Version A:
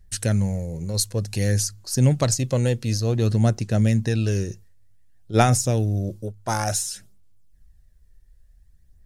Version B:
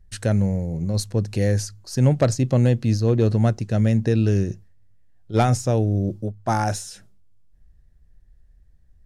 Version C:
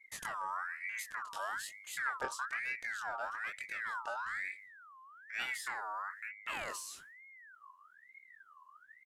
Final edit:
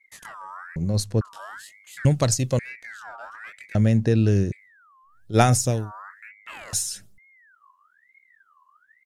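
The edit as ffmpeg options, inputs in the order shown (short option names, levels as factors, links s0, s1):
-filter_complex "[1:a]asplit=2[s0][s1];[0:a]asplit=3[s2][s3][s4];[2:a]asplit=6[s5][s6][s7][s8][s9][s10];[s5]atrim=end=0.762[s11];[s0]atrim=start=0.758:end=1.212[s12];[s6]atrim=start=1.208:end=2.052[s13];[s2]atrim=start=2.048:end=2.592[s14];[s7]atrim=start=2.588:end=3.752[s15];[s1]atrim=start=3.748:end=4.522[s16];[s8]atrim=start=4.518:end=5.27[s17];[s3]atrim=start=5.03:end=5.92[s18];[s9]atrim=start=5.68:end=6.732[s19];[s4]atrim=start=6.728:end=7.182[s20];[s10]atrim=start=7.178[s21];[s11][s12]acrossfade=d=0.004:c1=hsin:c2=hsin[s22];[s22][s13]acrossfade=d=0.004:c1=hsin:c2=hsin[s23];[s23][s14]acrossfade=d=0.004:c1=hsin:c2=hsin[s24];[s24][s15]acrossfade=d=0.004:c1=hsin:c2=hsin[s25];[s25][s16]acrossfade=d=0.004:c1=hsin:c2=hsin[s26];[s26][s17]acrossfade=d=0.004:c1=hsin:c2=hsin[s27];[s27][s18]acrossfade=d=0.24:c1=tri:c2=tri[s28];[s28][s19]acrossfade=d=0.24:c1=tri:c2=tri[s29];[s29][s20]acrossfade=d=0.004:c1=hsin:c2=hsin[s30];[s30][s21]acrossfade=d=0.004:c1=hsin:c2=hsin"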